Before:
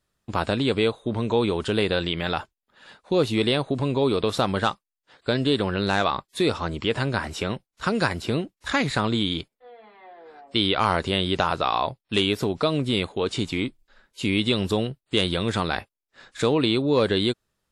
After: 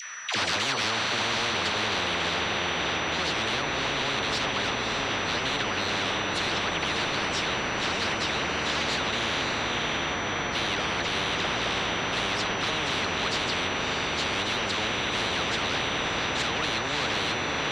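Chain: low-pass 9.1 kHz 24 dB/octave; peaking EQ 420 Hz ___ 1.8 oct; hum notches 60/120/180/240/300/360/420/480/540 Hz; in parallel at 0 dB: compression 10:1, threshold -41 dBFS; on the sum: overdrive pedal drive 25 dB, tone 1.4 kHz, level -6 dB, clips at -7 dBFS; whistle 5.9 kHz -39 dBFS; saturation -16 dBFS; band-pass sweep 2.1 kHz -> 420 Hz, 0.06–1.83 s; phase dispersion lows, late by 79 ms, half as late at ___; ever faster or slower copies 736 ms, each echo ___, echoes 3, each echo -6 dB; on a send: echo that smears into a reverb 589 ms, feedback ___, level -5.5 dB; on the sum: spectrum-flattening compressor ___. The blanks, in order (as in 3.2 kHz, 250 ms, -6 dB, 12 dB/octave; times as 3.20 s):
-11 dB, 730 Hz, -5 st, 43%, 10:1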